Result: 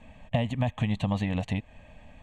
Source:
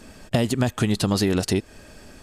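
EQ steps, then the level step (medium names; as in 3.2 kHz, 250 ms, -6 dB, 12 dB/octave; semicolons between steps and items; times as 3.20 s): distance through air 160 m; peaking EQ 7.2 kHz +2 dB 0.24 oct; static phaser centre 1.4 kHz, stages 6; -2.0 dB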